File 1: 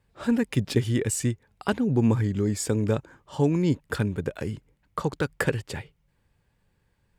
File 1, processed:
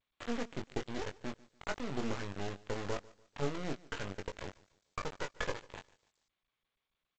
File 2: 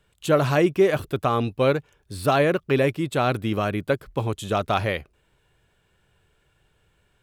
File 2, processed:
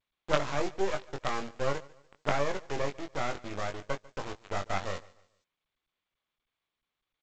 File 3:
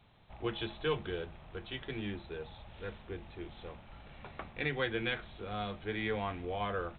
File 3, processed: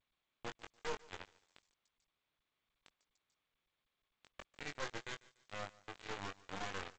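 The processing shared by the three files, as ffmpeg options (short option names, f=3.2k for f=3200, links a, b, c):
-filter_complex "[0:a]acrossover=split=3200[a][b];[b]acompressor=threshold=-53dB:ratio=4:attack=1:release=60[c];[a][c]amix=inputs=2:normalize=0,acrossover=split=430 2200:gain=0.251 1 0.126[d][e][f];[d][e][f]amix=inputs=3:normalize=0,aresample=16000,acrusher=bits=3:dc=4:mix=0:aa=0.000001,aresample=44100,asplit=2[g][h];[h]adelay=21,volume=-6dB[i];[g][i]amix=inputs=2:normalize=0,aecho=1:1:146|292|438:0.0794|0.0286|0.0103,volume=-4.5dB" -ar 16000 -c:a g722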